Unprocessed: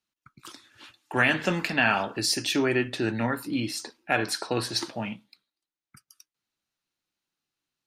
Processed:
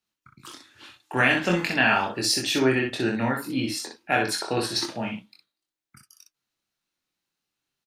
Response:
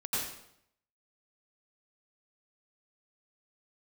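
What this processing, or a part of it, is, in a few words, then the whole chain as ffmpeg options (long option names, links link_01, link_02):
slapback doubling: -filter_complex "[0:a]asplit=3[link_01][link_02][link_03];[link_02]adelay=23,volume=-3.5dB[link_04];[link_03]adelay=61,volume=-5dB[link_05];[link_01][link_04][link_05]amix=inputs=3:normalize=0"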